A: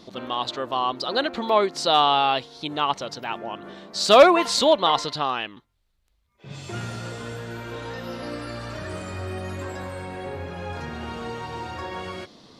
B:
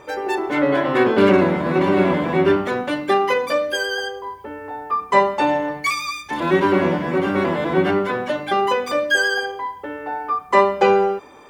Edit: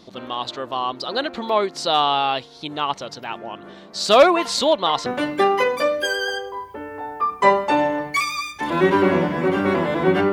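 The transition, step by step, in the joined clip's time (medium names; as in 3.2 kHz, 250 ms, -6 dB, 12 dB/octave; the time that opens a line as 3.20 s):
A
5.06 s: go over to B from 2.76 s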